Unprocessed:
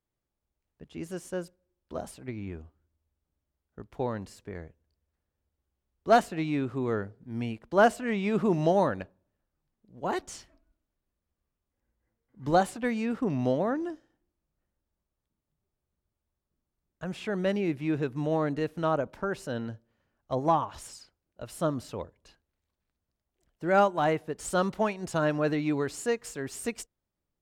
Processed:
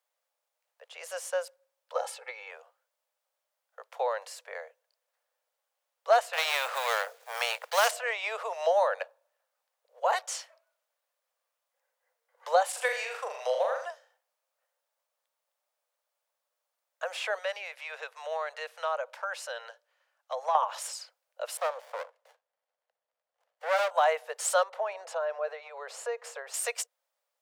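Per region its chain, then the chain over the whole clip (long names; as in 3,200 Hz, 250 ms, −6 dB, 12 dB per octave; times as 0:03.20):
0:01.95–0:02.51: high-shelf EQ 10,000 Hz −9.5 dB + comb filter 2.3 ms, depth 77%
0:06.33–0:07.91: mu-law and A-law mismatch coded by A + every bin compressed towards the loudest bin 2 to 1
0:12.69–0:13.85: output level in coarse steps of 9 dB + high-shelf EQ 2,400 Hz +8 dB + flutter between parallel walls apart 6.8 metres, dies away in 0.46 s
0:17.38–0:20.55: high-pass filter 1,100 Hz 6 dB per octave + high-shelf EQ 11,000 Hz −7 dB + downward compressor 1.5 to 1, threshold −42 dBFS
0:21.57–0:23.91: high-shelf EQ 8,400 Hz −9.5 dB + windowed peak hold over 33 samples
0:24.63–0:26.54: high-pass filter 140 Hz 6 dB per octave + spectral tilt −4 dB per octave + downward compressor, threshold −28 dBFS
whole clip: downward compressor 3 to 1, threshold −28 dBFS; Butterworth high-pass 490 Hz 96 dB per octave; level +7.5 dB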